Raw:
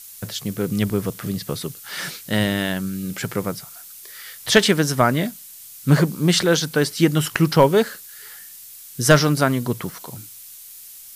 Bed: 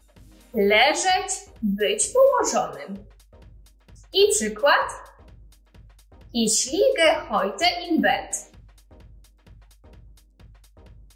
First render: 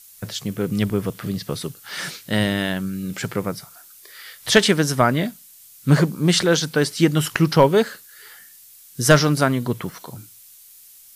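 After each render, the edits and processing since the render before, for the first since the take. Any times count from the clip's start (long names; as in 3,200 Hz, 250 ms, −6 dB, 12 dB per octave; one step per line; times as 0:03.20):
noise reduction from a noise print 6 dB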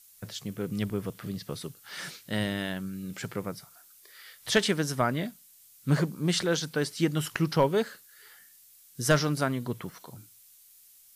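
level −9.5 dB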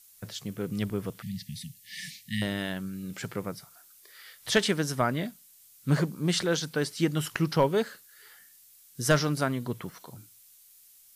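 0:01.22–0:02.42: linear-phase brick-wall band-stop 250–1,700 Hz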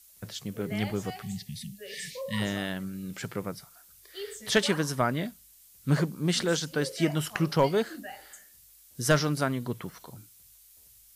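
mix in bed −22 dB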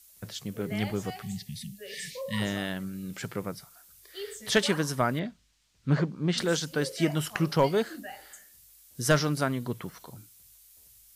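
0:05.19–0:06.38: high-frequency loss of the air 140 metres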